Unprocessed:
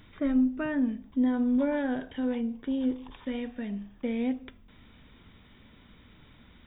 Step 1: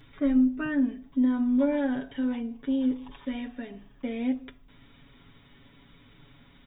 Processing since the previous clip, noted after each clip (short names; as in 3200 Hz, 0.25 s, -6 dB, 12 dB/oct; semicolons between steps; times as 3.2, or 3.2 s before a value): comb 7.2 ms, depth 88%; gain -2 dB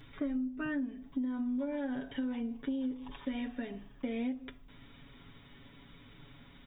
compressor 10:1, threshold -32 dBFS, peak gain reduction 14 dB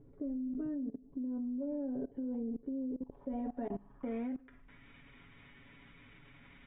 low-pass sweep 450 Hz -> 2300 Hz, 2.88–4.86; level quantiser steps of 21 dB; gain +5 dB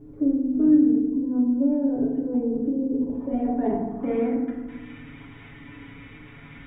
FDN reverb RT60 1.2 s, low-frequency decay 1.35×, high-frequency decay 0.35×, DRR -3.5 dB; gain +8 dB